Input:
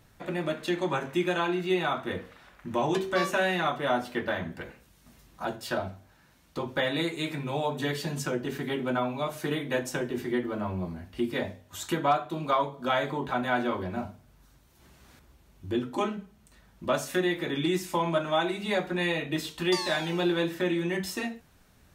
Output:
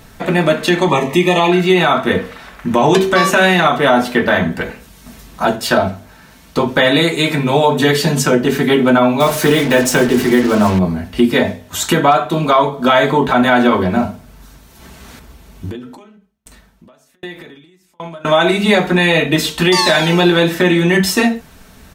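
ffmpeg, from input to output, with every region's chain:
ffmpeg -i in.wav -filter_complex "[0:a]asettb=1/sr,asplit=3[link_01][link_02][link_03];[link_01]atrim=end=0.884[link_04];[link_02]atrim=start=0.88:end=1.52,asetpts=PTS-STARTPTS,afade=type=in:duration=0.004:curve=qsin,afade=type=out:start_time=0.636:duration=0.004:curve=qsin,asuperstop=centerf=1500:order=12:qfactor=3.6,acompressor=mode=upward:threshold=-35dB:ratio=2.5:attack=3.2:release=140:knee=2.83:detection=peak[link_05];[link_03]atrim=start=1.516[link_06];[link_04][link_05]acrossfade=duration=0.004:curve1=hsin:curve2=qsin[link_07];[link_07][link_06]acrossfade=duration=0.004:curve1=qsin:curve2=hsin,asettb=1/sr,asplit=3[link_08][link_09][link_10];[link_08]atrim=end=9.204[link_11];[link_09]atrim=start=9.2:end=10.79,asetpts=PTS-STARTPTS,afade=type=in:duration=0.004:curve=qsin,afade=type=out:start_time=1.586:duration=0.004:curve=qsin,aeval=exprs='val(0)+0.5*0.00891*sgn(val(0))':channel_layout=same,acrusher=bits=6:mix=0:aa=0.5[link_12];[link_10]atrim=start=10.786[link_13];[link_11][link_12]acrossfade=duration=0.004:curve1=hsin:curve2=qsin[link_14];[link_14][link_13]acrossfade=duration=0.004:curve1=qsin:curve2=hsin,asettb=1/sr,asplit=3[link_15][link_16][link_17];[link_15]atrim=end=15.694[link_18];[link_16]atrim=start=15.69:end=18.25,asetpts=PTS-STARTPTS,afade=type=in:duration=0.004:curve=qsin,afade=type=out:start_time=2.556:duration=0.004:curve=qsin,acompressor=threshold=-38dB:ratio=16:attack=3.2:release=140:knee=1:detection=peak,aeval=exprs='val(0)*pow(10,-38*if(lt(mod(1.3*n/s,1),2*abs(1.3)/1000),1-mod(1.3*n/s,1)/(2*abs(1.3)/1000),(mod(1.3*n/s,1)-2*abs(1.3)/1000)/(1-2*abs(1.3)/1000))/20)':channel_layout=same[link_19];[link_17]atrim=start=18.246[link_20];[link_18][link_19]acrossfade=duration=0.004:curve1=hsin:curve2=qsin[link_21];[link_21][link_20]acrossfade=duration=0.004:curve1=qsin:curve2=hsin,aecho=1:1:4.5:0.35,alimiter=level_in=19dB:limit=-1dB:release=50:level=0:latency=1,volume=-1dB" out.wav

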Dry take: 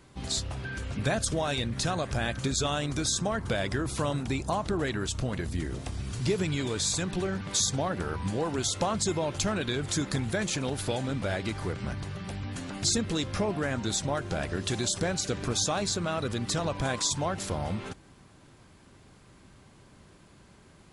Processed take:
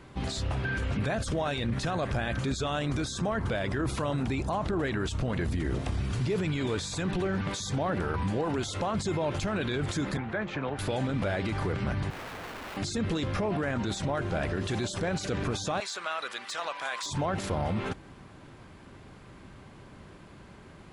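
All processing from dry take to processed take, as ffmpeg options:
ffmpeg -i in.wav -filter_complex "[0:a]asettb=1/sr,asplit=3[link_01][link_02][link_03];[link_01]atrim=end=10.174[link_04];[link_02]atrim=start=10.17:end=10.79,asetpts=PTS-STARTPTS,afade=type=in:duration=0.004:curve=qsin,afade=type=out:start_time=0.616:duration=0.004:curve=qsin,lowpass=1800,acrossover=split=220|760[link_05][link_06][link_07];[link_05]acompressor=threshold=-46dB:ratio=4[link_08];[link_06]acompressor=threshold=-43dB:ratio=4[link_09];[link_07]acompressor=threshold=-38dB:ratio=4[link_10];[link_08][link_09][link_10]amix=inputs=3:normalize=0,asplit=2[link_11][link_12];[link_12]adelay=14,volume=-13dB[link_13];[link_11][link_13]amix=inputs=2:normalize=0,atrim=end_sample=27342[link_14];[link_03]atrim=start=10.786[link_15];[link_04][link_14]acrossfade=duration=0.004:curve1=hsin:curve2=qsin[link_16];[link_16][link_15]acrossfade=duration=0.004:curve1=qsin:curve2=hsin,asettb=1/sr,asplit=3[link_17][link_18][link_19];[link_17]atrim=end=12.104[link_20];[link_18]atrim=start=12.1:end=12.77,asetpts=PTS-STARTPTS,afade=type=in:duration=0.004:curve=qsin,afade=type=out:start_time=0.666:duration=0.004:curve=qsin,lowpass=1000,aeval=exprs='(mod(112*val(0)+1,2)-1)/112':channel_layout=same[link_21];[link_19]atrim=start=12.766[link_22];[link_20][link_21]acrossfade=duration=0.004:curve1=hsin:curve2=qsin[link_23];[link_23][link_22]acrossfade=duration=0.004:curve1=qsin:curve2=hsin,asettb=1/sr,asplit=3[link_24][link_25][link_26];[link_24]atrim=end=15.804[link_27];[link_25]atrim=start=15.8:end=17.06,asetpts=PTS-STARTPTS,afade=type=in:duration=0.004:curve=qsin,afade=type=out:start_time=1.256:duration=0.004:curve=qsin,highpass=1100,aeval=exprs='0.0944*(abs(mod(val(0)/0.0944+3,4)-2)-1)':channel_layout=same[link_28];[link_26]atrim=start=17.056[link_29];[link_27][link_28]acrossfade=duration=0.004:curve1=hsin:curve2=qsin[link_30];[link_30][link_29]acrossfade=duration=0.004:curve1=qsin:curve2=hsin,alimiter=level_in=3.5dB:limit=-24dB:level=0:latency=1:release=20,volume=-3.5dB,bass=frequency=250:gain=-1,treble=frequency=4000:gain=-10,volume=6.5dB" out.wav

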